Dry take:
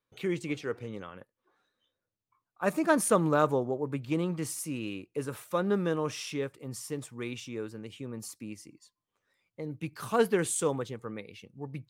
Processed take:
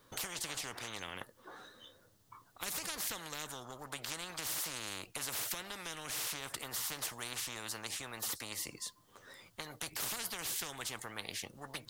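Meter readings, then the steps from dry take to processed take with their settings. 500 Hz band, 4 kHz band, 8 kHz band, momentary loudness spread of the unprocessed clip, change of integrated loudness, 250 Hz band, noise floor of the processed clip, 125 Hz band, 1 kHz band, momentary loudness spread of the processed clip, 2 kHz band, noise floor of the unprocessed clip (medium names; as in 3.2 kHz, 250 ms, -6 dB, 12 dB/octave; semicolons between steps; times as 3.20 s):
-20.0 dB, +5.0 dB, 0.0 dB, 16 LU, -8.0 dB, -20.0 dB, -66 dBFS, -16.5 dB, -11.0 dB, 13 LU, -4.5 dB, under -85 dBFS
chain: peaking EQ 2.4 kHz -9 dB 0.38 oct; compression 6:1, threshold -34 dBFS, peak gain reduction 15 dB; spectrum-flattening compressor 10:1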